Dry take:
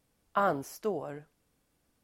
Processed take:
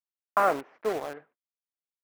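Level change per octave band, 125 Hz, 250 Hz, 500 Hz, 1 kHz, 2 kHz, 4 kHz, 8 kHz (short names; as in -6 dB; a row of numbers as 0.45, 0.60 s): -7.0, -1.5, +4.0, +4.5, +5.5, +4.0, 0.0 dB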